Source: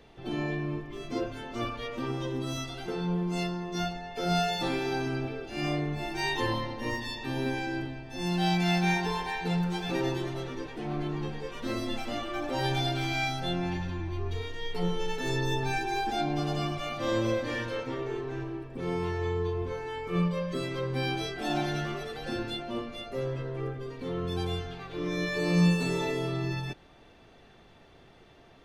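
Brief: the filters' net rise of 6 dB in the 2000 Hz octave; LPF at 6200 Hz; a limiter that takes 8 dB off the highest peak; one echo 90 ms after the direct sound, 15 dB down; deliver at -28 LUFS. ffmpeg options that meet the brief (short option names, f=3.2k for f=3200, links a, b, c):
-af "lowpass=6.2k,equalizer=f=2k:t=o:g=7.5,alimiter=limit=-20.5dB:level=0:latency=1,aecho=1:1:90:0.178,volume=3dB"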